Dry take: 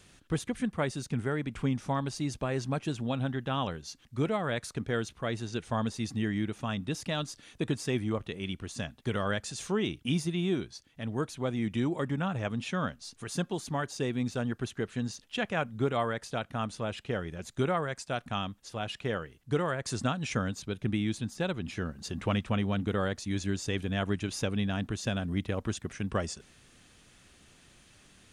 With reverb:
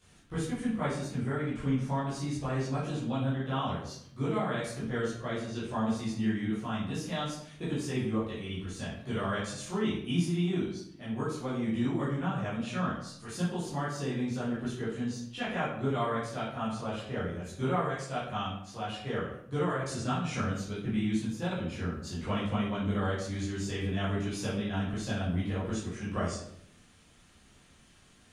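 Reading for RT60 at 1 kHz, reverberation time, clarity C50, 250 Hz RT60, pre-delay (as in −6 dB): 0.65 s, 0.70 s, 2.5 dB, 0.90 s, 11 ms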